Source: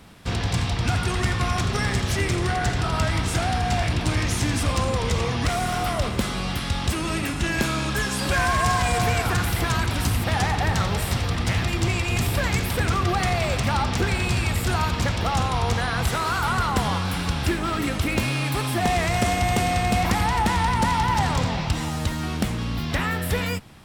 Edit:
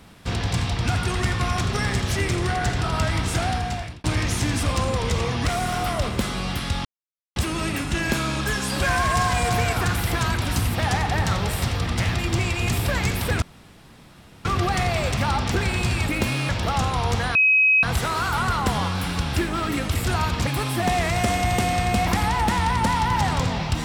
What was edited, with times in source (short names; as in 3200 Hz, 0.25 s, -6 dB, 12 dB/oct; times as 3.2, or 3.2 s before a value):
3.49–4.04 fade out
6.85 insert silence 0.51 s
12.91 insert room tone 1.03 s
14.55–15.07 swap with 18.05–18.45
15.93 add tone 2540 Hz -13.5 dBFS 0.48 s